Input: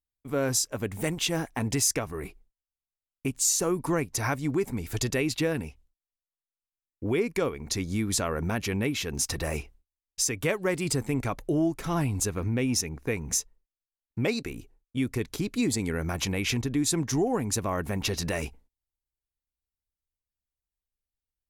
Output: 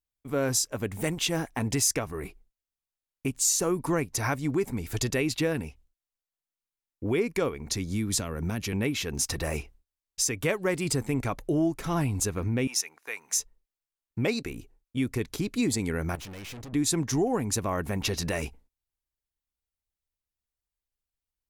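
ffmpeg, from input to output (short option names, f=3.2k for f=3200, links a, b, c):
-filter_complex "[0:a]asettb=1/sr,asplit=3[a][b][c];[a]atrim=end=7.714[d];[b]atrim=start=7.71:end=8.73,asetpts=PTS-STARTPTS,afade=t=in:d=0.004:c=qsin,afade=t=out:st=1.016:d=0.004:c=qsin,acrossover=split=300|3000[e][f][g];[f]acompressor=threshold=-41dB:ratio=2:attack=3.2:release=140:knee=2.83:detection=peak[h];[e][h][g]amix=inputs=3:normalize=0[i];[c]atrim=start=8.726[j];[d][i]acrossfade=d=0.004:c1=hsin:c2=qsin[k];[k][j]acrossfade=d=0.004:c1=qsin:c2=hsin,asettb=1/sr,asplit=3[l][m][n];[l]atrim=end=12.674[o];[m]atrim=start=12.67:end=13.39,asetpts=PTS-STARTPTS,afade=t=in:d=0.004:c=qsin,afade=t=out:st=0.716:d=0.004:c=qsin,highpass=1k[p];[n]atrim=start=13.386[q];[o][p]acrossfade=d=0.004:c1=hsin:c2=qsin[r];[r][q]acrossfade=d=0.004:c1=qsin:c2=hsin,asettb=1/sr,asplit=3[s][t][u];[s]atrim=end=16.154[v];[t]atrim=start=16.15:end=16.73,asetpts=PTS-STARTPTS,afade=t=in:d=0.004:c=qsin,afade=t=out:st=0.576:d=0.004:c=qsin,aeval=exprs='(tanh(100*val(0)+0.35)-tanh(0.35))/100':c=same[w];[u]atrim=start=16.726[x];[v][w]acrossfade=d=0.004:c1=hsin:c2=qsin[y];[y][x]acrossfade=d=0.004:c1=qsin:c2=hsin"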